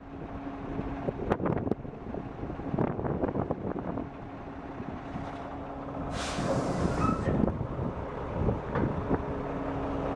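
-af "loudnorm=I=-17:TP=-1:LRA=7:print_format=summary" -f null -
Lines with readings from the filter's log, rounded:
Input Integrated:    -32.7 LUFS
Input True Peak:     -11.2 dBTP
Input LRA:             3.9 LU
Input Threshold:     -42.7 LUFS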